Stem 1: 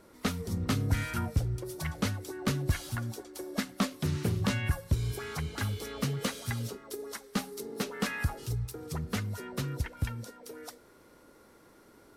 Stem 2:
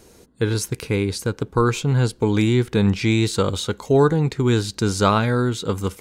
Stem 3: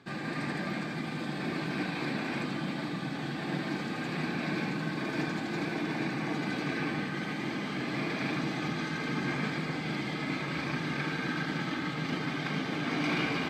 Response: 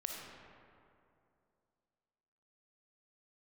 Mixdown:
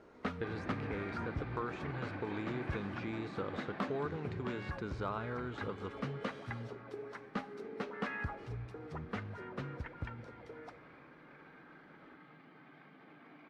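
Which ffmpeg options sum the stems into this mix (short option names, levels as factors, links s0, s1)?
-filter_complex "[0:a]volume=0.668,asplit=2[s0][s1];[s1]volume=0.282[s2];[1:a]acrossover=split=1600|5200[s3][s4][s5];[s3]acompressor=threshold=0.0398:ratio=4[s6];[s4]acompressor=threshold=0.0112:ratio=4[s7];[s5]acompressor=threshold=0.00794:ratio=4[s8];[s6][s7][s8]amix=inputs=3:normalize=0,volume=0.376,asplit=3[s9][s10][s11];[s10]volume=0.237[s12];[2:a]alimiter=level_in=1.68:limit=0.0631:level=0:latency=1:release=86,volume=0.596,adelay=350,volume=0.596,afade=t=out:st=3.73:d=0.58:silence=0.251189[s13];[s11]apad=whole_len=536296[s14];[s0][s14]sidechaincompress=threshold=0.00708:ratio=8:attack=28:release=150[s15];[3:a]atrim=start_sample=2205[s16];[s2][s12]amix=inputs=2:normalize=0[s17];[s17][s16]afir=irnorm=-1:irlink=0[s18];[s15][s9][s13][s18]amix=inputs=4:normalize=0,lowpass=1800,lowshelf=f=260:g=-10,asoftclip=type=hard:threshold=0.0531"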